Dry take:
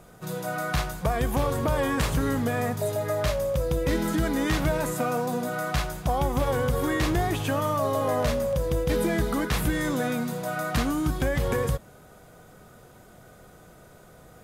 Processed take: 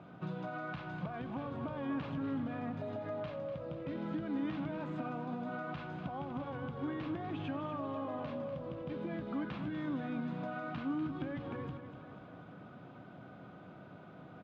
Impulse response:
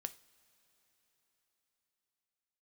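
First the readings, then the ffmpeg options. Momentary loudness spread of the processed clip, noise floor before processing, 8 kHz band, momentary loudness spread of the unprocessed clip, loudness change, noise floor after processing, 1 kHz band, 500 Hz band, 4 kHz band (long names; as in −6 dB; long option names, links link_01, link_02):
15 LU, −51 dBFS, below −40 dB, 4 LU, −13.5 dB, −53 dBFS, −13.5 dB, −15.5 dB, −19.5 dB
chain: -filter_complex "[0:a]alimiter=level_in=2.5dB:limit=-24dB:level=0:latency=1:release=246,volume=-2.5dB,acompressor=threshold=-35dB:ratio=6,highpass=frequency=100:width=0.5412,highpass=frequency=100:width=1.3066,equalizer=frequency=180:width_type=q:width=4:gain=3,equalizer=frequency=280:width_type=q:width=4:gain=7,equalizer=frequency=460:width_type=q:width=4:gain=-7,equalizer=frequency=1900:width_type=q:width=4:gain=-7,lowpass=frequency=3100:width=0.5412,lowpass=frequency=3100:width=1.3066,asplit=2[link_01][link_02];[link_02]aecho=0:1:245|490|735|980|1225|1470|1715:0.316|0.187|0.11|0.0649|0.0383|0.0226|0.0133[link_03];[link_01][link_03]amix=inputs=2:normalize=0,volume=-1.5dB"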